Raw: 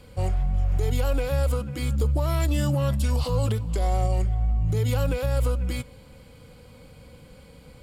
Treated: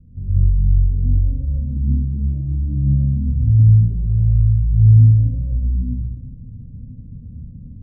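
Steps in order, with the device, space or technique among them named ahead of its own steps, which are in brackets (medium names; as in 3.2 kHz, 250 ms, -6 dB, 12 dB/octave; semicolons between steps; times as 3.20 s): club heard from the street (peak limiter -25.5 dBFS, peak gain reduction 11.5 dB; low-pass 220 Hz 24 dB/octave; reverberation RT60 0.95 s, pre-delay 106 ms, DRR -8.5 dB); trim +4.5 dB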